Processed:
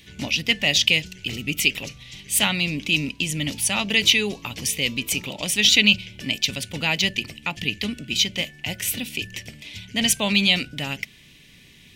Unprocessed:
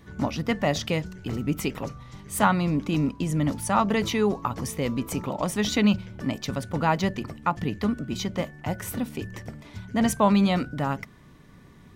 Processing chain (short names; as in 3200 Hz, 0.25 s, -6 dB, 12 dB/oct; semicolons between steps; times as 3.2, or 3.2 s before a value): resonant high shelf 1800 Hz +14 dB, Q 3; gain -3.5 dB